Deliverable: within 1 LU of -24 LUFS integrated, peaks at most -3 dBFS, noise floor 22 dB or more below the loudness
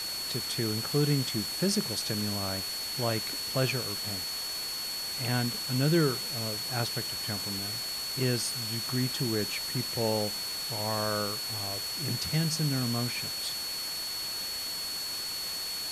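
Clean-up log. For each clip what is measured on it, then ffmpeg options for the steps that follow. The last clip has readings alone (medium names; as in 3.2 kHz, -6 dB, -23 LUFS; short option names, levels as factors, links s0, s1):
steady tone 4.4 kHz; tone level -34 dBFS; noise floor -35 dBFS; noise floor target -52 dBFS; loudness -30.0 LUFS; peak level -15.0 dBFS; loudness target -24.0 LUFS
-> -af "bandreject=f=4400:w=30"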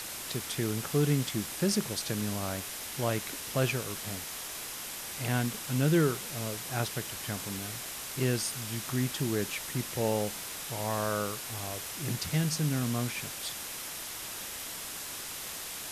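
steady tone not found; noise floor -40 dBFS; noise floor target -55 dBFS
-> -af "afftdn=nr=15:nf=-40"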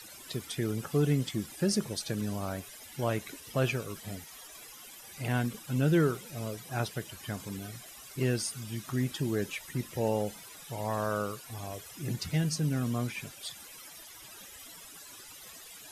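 noise floor -50 dBFS; noise floor target -55 dBFS
-> -af "afftdn=nr=6:nf=-50"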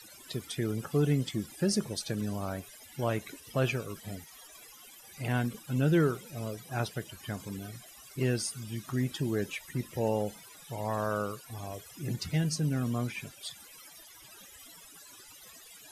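noise floor -53 dBFS; noise floor target -55 dBFS
-> -af "afftdn=nr=6:nf=-53"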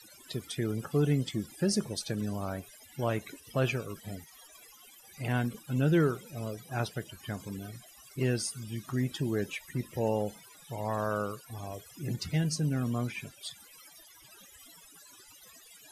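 noise floor -56 dBFS; loudness -33.0 LUFS; peak level -16.0 dBFS; loudness target -24.0 LUFS
-> -af "volume=2.82"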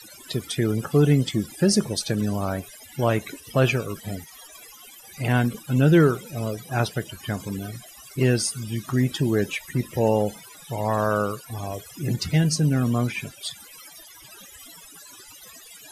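loudness -24.0 LUFS; peak level -7.0 dBFS; noise floor -47 dBFS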